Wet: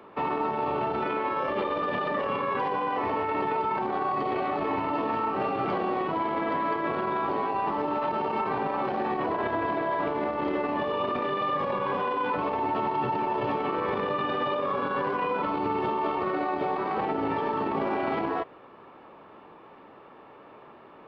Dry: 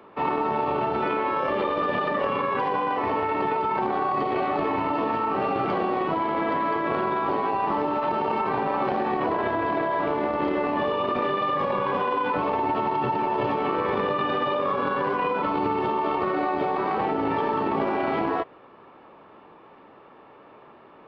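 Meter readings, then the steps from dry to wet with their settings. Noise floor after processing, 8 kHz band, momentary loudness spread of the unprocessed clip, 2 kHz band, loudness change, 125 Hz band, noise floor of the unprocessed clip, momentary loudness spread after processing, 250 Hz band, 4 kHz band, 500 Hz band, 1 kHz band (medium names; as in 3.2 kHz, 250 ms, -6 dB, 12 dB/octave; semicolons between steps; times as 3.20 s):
-50 dBFS, no reading, 1 LU, -3.0 dB, -3.0 dB, -3.0 dB, -50 dBFS, 1 LU, -3.0 dB, -3.0 dB, -3.0 dB, -3.0 dB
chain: peak limiter -19.5 dBFS, peak gain reduction 7 dB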